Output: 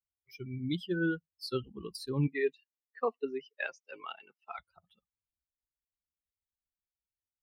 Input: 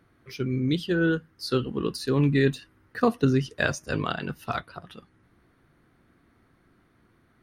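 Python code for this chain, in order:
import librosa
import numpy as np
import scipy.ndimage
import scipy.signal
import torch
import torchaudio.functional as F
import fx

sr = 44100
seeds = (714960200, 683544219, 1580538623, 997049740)

y = fx.bin_expand(x, sr, power=2.0)
y = fx.cabinet(y, sr, low_hz=380.0, low_slope=24, high_hz=4000.0, hz=(410.0, 620.0, 1500.0, 2200.0, 3700.0), db=(4, -8, -6, 5, -9), at=(2.26, 4.58), fade=0.02)
y = y * 10.0 ** (-4.5 / 20.0)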